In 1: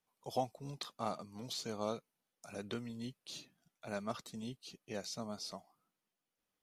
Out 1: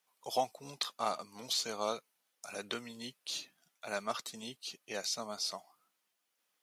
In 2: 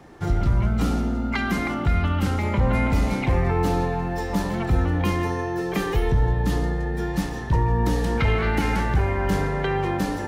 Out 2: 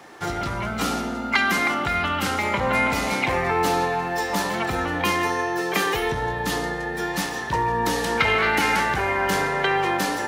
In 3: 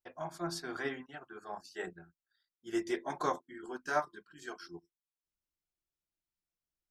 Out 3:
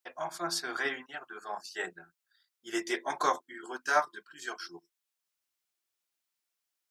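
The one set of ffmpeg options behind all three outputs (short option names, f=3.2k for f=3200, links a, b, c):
-af "highpass=f=1k:p=1,volume=9dB"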